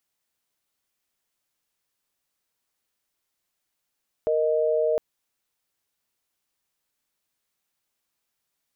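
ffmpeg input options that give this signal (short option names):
-f lavfi -i "aevalsrc='0.075*(sin(2*PI*466.16*t)+sin(2*PI*622.25*t))':d=0.71:s=44100"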